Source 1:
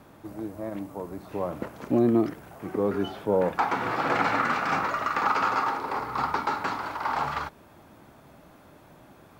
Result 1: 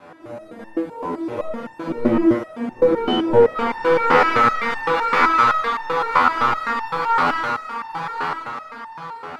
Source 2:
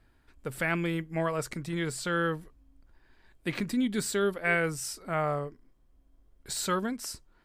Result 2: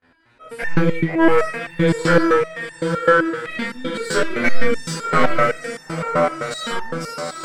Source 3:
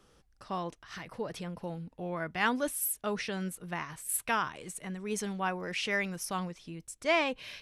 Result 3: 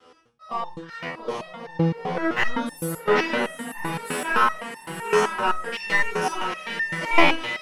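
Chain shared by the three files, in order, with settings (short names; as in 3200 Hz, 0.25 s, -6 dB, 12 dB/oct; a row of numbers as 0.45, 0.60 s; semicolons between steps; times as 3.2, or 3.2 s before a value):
stepped spectrum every 0.1 s; steep low-pass 12000 Hz; high shelf 6500 Hz -5.5 dB; gate with hold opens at -57 dBFS; dynamic EQ 680 Hz, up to -7 dB, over -47 dBFS, Q 3.1; HPF 58 Hz; on a send: diffused feedback echo 0.858 s, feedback 44%, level -5 dB; on the sum: overdrive pedal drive 16 dB, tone 2800 Hz, clips at -13.5 dBFS; shoebox room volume 150 m³, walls furnished, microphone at 2 m; in parallel at -7 dB: crossover distortion -34.5 dBFS; on the sum: stepped resonator 7.8 Hz 84–900 Hz; normalise peaks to -1.5 dBFS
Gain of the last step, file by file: +9.0, +13.0, +11.0 dB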